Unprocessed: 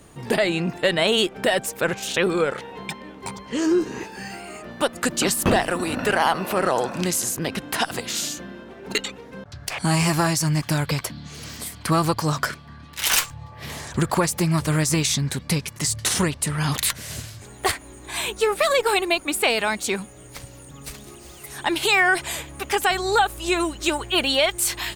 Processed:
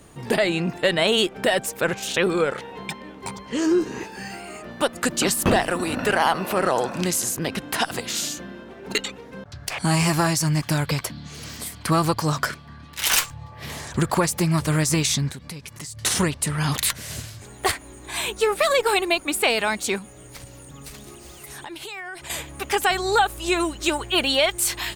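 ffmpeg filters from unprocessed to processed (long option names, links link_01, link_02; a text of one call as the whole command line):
ffmpeg -i in.wav -filter_complex "[0:a]asettb=1/sr,asplit=3[link_01][link_02][link_03];[link_01]atrim=end=15.304[link_04];[link_02]atrim=start=15.3:end=16.03,asetpts=PTS-STARTPTS,afade=type=in:duration=0.004:curve=qsin,afade=type=out:start_time=0.726:duration=0.004:curve=qsin,acompressor=threshold=-33dB:ratio=6:attack=3.2:release=140:knee=1:detection=peak[link_05];[link_03]atrim=start=16.026[link_06];[link_04][link_05]acrossfade=duration=0.004:curve1=hsin:curve2=qsin[link_07];[link_07][link_06]acrossfade=duration=0.004:curve1=qsin:curve2=hsin,asettb=1/sr,asplit=3[link_08][link_09][link_10];[link_08]atrim=end=19.984[link_11];[link_09]atrim=start=19.98:end=22.3,asetpts=PTS-STARTPTS,afade=type=in:duration=0.004:curve=qsin,afade=type=out:start_time=2.316:duration=0.004:curve=qsin,acompressor=threshold=-34dB:ratio=6:attack=3.2:release=140:knee=1:detection=peak[link_12];[link_10]atrim=start=22.296[link_13];[link_11][link_12]acrossfade=duration=0.004:curve1=hsin:curve2=qsin[link_14];[link_14][link_13]acrossfade=duration=0.004:curve1=qsin:curve2=hsin" out.wav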